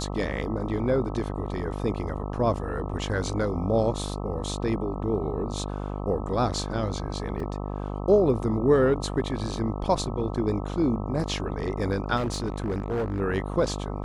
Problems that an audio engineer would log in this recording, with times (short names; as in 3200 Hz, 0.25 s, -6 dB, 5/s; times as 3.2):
buzz 50 Hz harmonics 26 -32 dBFS
7.4 gap 2.3 ms
12.16–13.21 clipped -23.5 dBFS